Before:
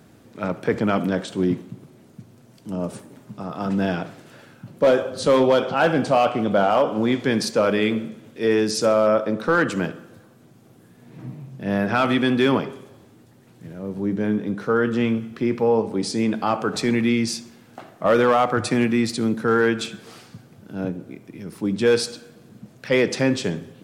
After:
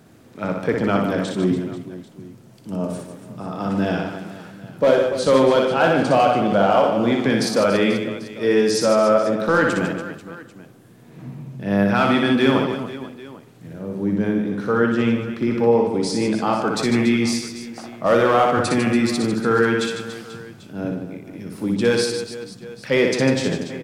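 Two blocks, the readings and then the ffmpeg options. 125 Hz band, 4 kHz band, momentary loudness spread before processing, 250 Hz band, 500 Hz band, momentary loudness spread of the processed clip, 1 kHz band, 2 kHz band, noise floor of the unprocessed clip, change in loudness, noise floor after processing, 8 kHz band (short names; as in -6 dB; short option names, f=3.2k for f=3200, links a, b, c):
+2.5 dB, +2.0 dB, 14 LU, +2.0 dB, +2.0 dB, 18 LU, +2.5 dB, +2.0 dB, -51 dBFS, +2.0 dB, -46 dBFS, +2.0 dB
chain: -af "aecho=1:1:60|150|285|487.5|791.2:0.631|0.398|0.251|0.158|0.1"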